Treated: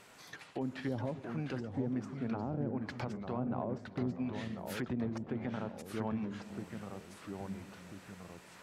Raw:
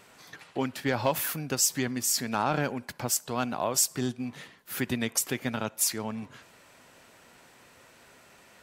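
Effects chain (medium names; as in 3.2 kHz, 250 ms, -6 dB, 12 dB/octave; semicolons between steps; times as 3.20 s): low-pass that closes with the level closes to 410 Hz, closed at -24 dBFS; peak limiter -24.5 dBFS, peak gain reduction 8.5 dB; on a send: repeats whose band climbs or falls 147 ms, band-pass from 210 Hz, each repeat 0.7 oct, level -12 dB; on the sum: ever faster or slower copies 612 ms, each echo -2 st, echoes 3, each echo -6 dB; trim -2.5 dB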